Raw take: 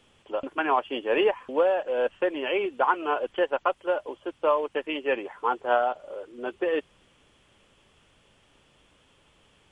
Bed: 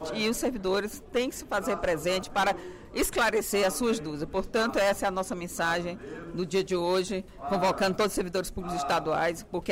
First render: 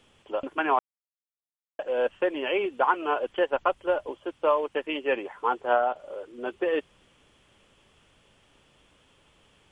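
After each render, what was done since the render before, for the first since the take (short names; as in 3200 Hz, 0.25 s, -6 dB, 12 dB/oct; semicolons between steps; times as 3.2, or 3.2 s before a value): 0.79–1.79 mute; 3.53–4.12 low shelf 140 Hz +11 dB; 5.54–5.96 treble ducked by the level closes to 2400 Hz, closed at -18.5 dBFS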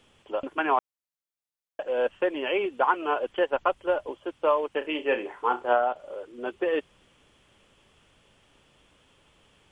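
4.78–5.73 flutter echo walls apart 5.6 m, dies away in 0.21 s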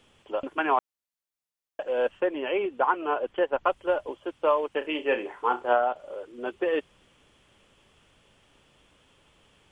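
2.2–3.64 high shelf 3000 Hz -9 dB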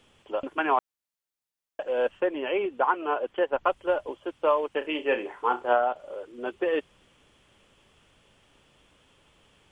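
2.81–3.47 low shelf 110 Hz -7.5 dB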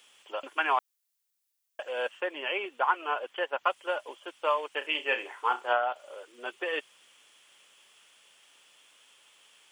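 HPF 740 Hz 6 dB/oct; tilt +3 dB/oct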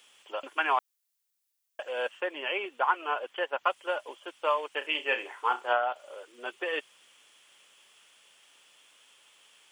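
nothing audible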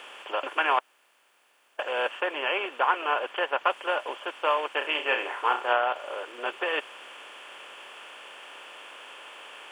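per-bin compression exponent 0.6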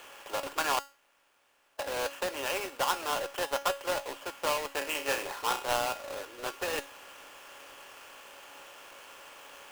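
half-waves squared off; resonator 280 Hz, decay 0.33 s, harmonics all, mix 70%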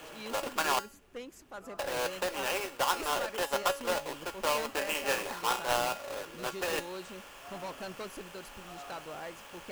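add bed -16 dB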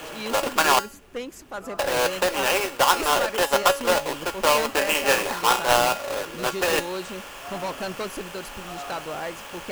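gain +10.5 dB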